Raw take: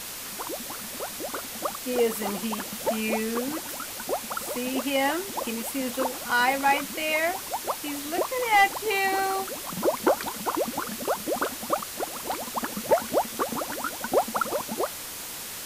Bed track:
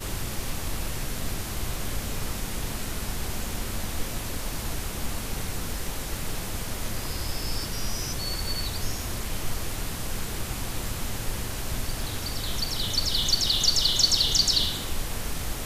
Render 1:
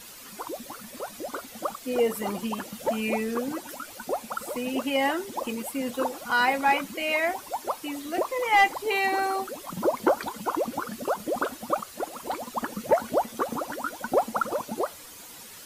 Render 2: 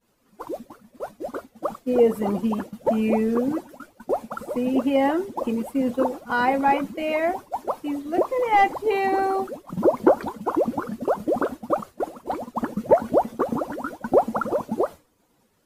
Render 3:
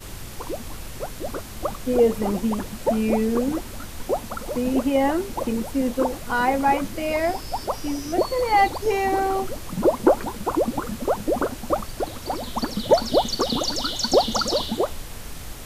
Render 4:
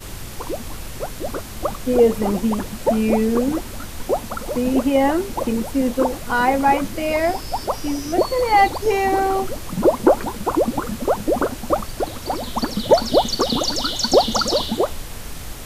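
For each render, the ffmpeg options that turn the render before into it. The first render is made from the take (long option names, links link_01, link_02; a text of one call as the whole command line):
ffmpeg -i in.wav -af "afftdn=noise_reduction=11:noise_floor=-37" out.wav
ffmpeg -i in.wav -af "agate=range=-33dB:threshold=-32dB:ratio=3:detection=peak,tiltshelf=frequency=1200:gain=9" out.wav
ffmpeg -i in.wav -i bed.wav -filter_complex "[1:a]volume=-5dB[link_01];[0:a][link_01]amix=inputs=2:normalize=0" out.wav
ffmpeg -i in.wav -af "volume=3.5dB,alimiter=limit=-2dB:level=0:latency=1" out.wav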